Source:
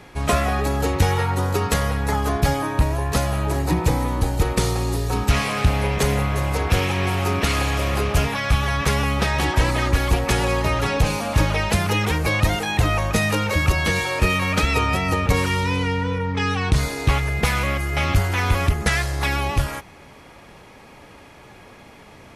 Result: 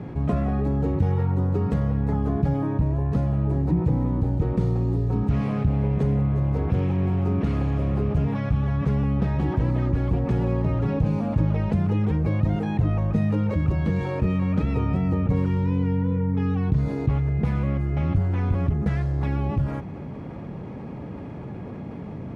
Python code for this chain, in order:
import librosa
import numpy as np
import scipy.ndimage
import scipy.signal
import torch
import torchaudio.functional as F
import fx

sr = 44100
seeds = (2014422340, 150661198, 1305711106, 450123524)

y = fx.bandpass_q(x, sr, hz=160.0, q=1.2)
y = fx.env_flatten(y, sr, amount_pct=50)